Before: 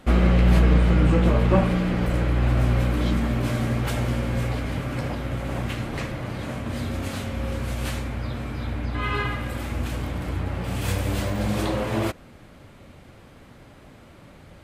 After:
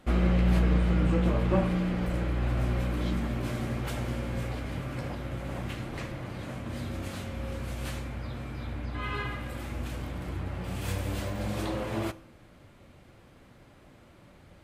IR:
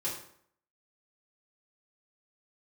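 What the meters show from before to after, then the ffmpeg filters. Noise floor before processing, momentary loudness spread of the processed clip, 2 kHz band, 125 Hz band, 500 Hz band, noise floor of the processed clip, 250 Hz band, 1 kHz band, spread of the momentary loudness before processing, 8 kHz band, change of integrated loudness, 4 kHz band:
-48 dBFS, 12 LU, -7.5 dB, -7.0 dB, -6.5 dB, -56 dBFS, -6.0 dB, -7.0 dB, 12 LU, -7.0 dB, -7.0 dB, -7.0 dB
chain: -filter_complex "[0:a]asplit=2[a][b];[1:a]atrim=start_sample=2205[c];[b][c]afir=irnorm=-1:irlink=0,volume=-17dB[d];[a][d]amix=inputs=2:normalize=0,volume=-8dB"

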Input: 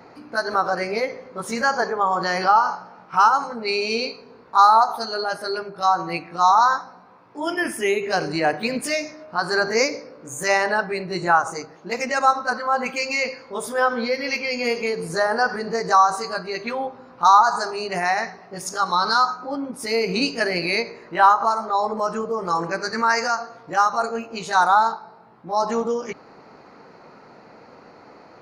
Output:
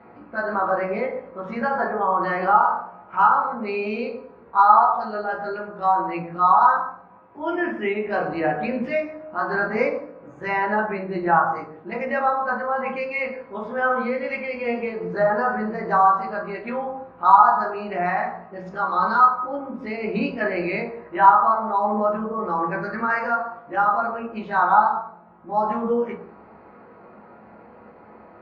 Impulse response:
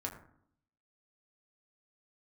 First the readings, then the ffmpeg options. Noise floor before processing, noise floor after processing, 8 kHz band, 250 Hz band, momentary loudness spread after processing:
-48 dBFS, -48 dBFS, under -35 dB, +1.0 dB, 14 LU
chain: -filter_complex "[0:a]lowpass=f=2.7k:w=0.5412,lowpass=f=2.7k:w=1.3066[a];[1:a]atrim=start_sample=2205,afade=t=out:st=0.22:d=0.01,atrim=end_sample=10143,asetrate=33516,aresample=44100[b];[a][b]afir=irnorm=-1:irlink=0,volume=-3dB"

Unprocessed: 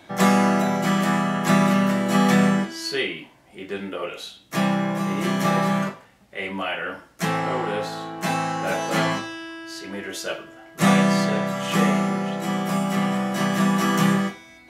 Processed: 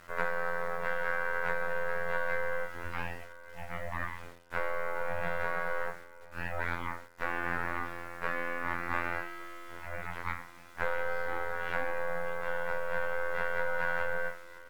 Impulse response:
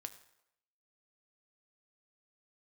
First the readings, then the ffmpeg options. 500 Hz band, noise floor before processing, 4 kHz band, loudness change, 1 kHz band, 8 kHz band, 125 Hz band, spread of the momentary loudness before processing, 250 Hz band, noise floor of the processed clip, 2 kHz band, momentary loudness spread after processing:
-9.0 dB, -51 dBFS, -21.5 dB, -12.5 dB, -11.5 dB, -24.5 dB, -21.0 dB, 14 LU, -27.5 dB, -51 dBFS, -5.0 dB, 9 LU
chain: -filter_complex "[0:a]highpass=42,acompressor=threshold=-22dB:ratio=10,afreqshift=61,afftfilt=real='hypot(re,im)*cos(PI*b)':imag='0':win_size=2048:overlap=0.75,aeval=exprs='abs(val(0))':c=same,lowpass=f=1.7k:t=q:w=2.1,aeval=exprs='0.355*(cos(1*acos(clip(val(0)/0.355,-1,1)))-cos(1*PI/2))+0.00631*(cos(5*acos(clip(val(0)/0.355,-1,1)))-cos(5*PI/2))+0.00631*(cos(8*acos(clip(val(0)/0.355,-1,1)))-cos(8*PI/2))':c=same,acrusher=bits=8:mix=0:aa=0.000001,asplit=2[a][b];[b]aecho=0:1:1159|2318:0.1|0.017[c];[a][c]amix=inputs=2:normalize=0,volume=-3.5dB" -ar 48000 -c:a libmp3lame -b:a 128k

